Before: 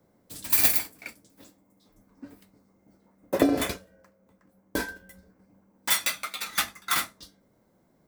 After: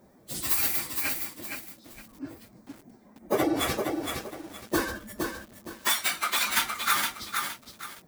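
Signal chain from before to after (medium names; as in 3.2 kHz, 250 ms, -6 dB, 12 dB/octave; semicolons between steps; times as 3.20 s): phase randomisation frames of 50 ms; dynamic bell 1.1 kHz, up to +4 dB, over -47 dBFS, Q 1.4; compression 10:1, threshold -29 dBFS, peak gain reduction 13.5 dB; formant-preserving pitch shift +2 st; bit-crushed delay 465 ms, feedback 35%, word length 9-bit, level -4.5 dB; trim +7.5 dB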